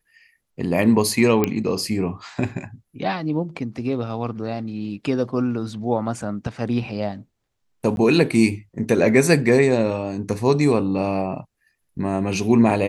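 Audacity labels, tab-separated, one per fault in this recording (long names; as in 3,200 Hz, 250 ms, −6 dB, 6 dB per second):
1.440000	1.440000	click −6 dBFS
7.960000	7.970000	drop-out 11 ms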